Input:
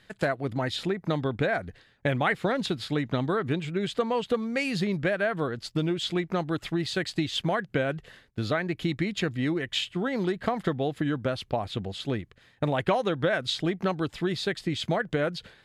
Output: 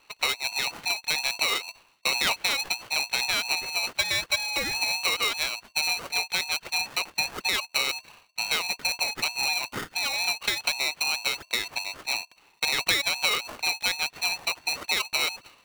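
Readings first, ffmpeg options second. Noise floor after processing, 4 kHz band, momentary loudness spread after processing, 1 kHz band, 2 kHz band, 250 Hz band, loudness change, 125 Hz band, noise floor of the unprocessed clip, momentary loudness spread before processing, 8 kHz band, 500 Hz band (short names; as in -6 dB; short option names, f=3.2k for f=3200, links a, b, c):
-62 dBFS, +9.0 dB, 5 LU, -1.0 dB, +6.0 dB, -18.5 dB, +3.0 dB, -20.0 dB, -61 dBFS, 5 LU, +16.0 dB, -12.0 dB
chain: -af "lowpass=f=3.1k:t=q:w=0.5098,lowpass=f=3.1k:t=q:w=0.6013,lowpass=f=3.1k:t=q:w=0.9,lowpass=f=3.1k:t=q:w=2.563,afreqshift=-3600,aeval=exprs='val(0)*sgn(sin(2*PI*840*n/s))':c=same"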